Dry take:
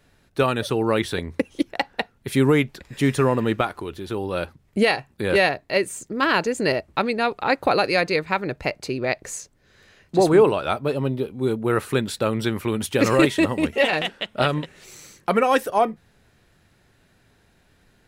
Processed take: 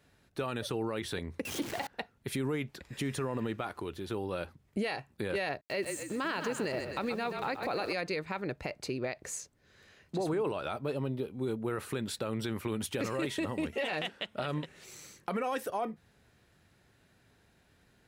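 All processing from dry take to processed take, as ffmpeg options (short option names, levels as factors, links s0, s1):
-filter_complex "[0:a]asettb=1/sr,asplit=3[s0][s1][s2];[s0]atrim=end=1.454[s3];[s1]atrim=start=1.45:end=1.87,asetpts=PTS-STARTPTS,afade=t=in:d=0.004:c=qsin,afade=t=out:st=0.416:d=0.004:c=qsin,aeval=exprs='val(0)+0.5*0.0531*sgn(val(0))':c=same,highpass=91[s4];[s2]atrim=start=1.866[s5];[s3][s4]acrossfade=d=0.004:c1=hsin:c2=qsin[s6];[s6][s5]acrossfade=d=0.004:c1=qsin:c2=hsin,asettb=1/sr,asplit=3[s7][s8][s9];[s7]atrim=end=5.614[s10];[s8]atrim=start=5.61:end=7.93,asetpts=PTS-STARTPTS,afade=t=in:d=0.004:c=qsin,afade=t=out:st=2.316:d=0.004:c=qsin,aeval=exprs='val(0)*gte(abs(val(0)),0.01)':c=same,asplit=7[s11][s12][s13][s14][s15][s16][s17];[s12]adelay=128,afreqshift=-35,volume=0.299[s18];[s13]adelay=256,afreqshift=-70,volume=0.153[s19];[s14]adelay=384,afreqshift=-105,volume=0.0776[s20];[s15]adelay=512,afreqshift=-140,volume=0.0398[s21];[s16]adelay=640,afreqshift=-175,volume=0.0202[s22];[s17]adelay=768,afreqshift=-210,volume=0.0104[s23];[s11][s18][s19][s20][s21][s22][s23]amix=inputs=7:normalize=0,atrim=end_sample=102312[s24];[s9]atrim=start=7.926[s25];[s10][s24]acrossfade=d=0.004:c1=hsin:c2=qsin[s26];[s26][s25]acrossfade=d=0.004:c1=qsin:c2=hsin,highpass=44,alimiter=limit=0.178:level=0:latency=1:release=33,acompressor=threshold=0.0355:ratio=1.5,volume=0.501"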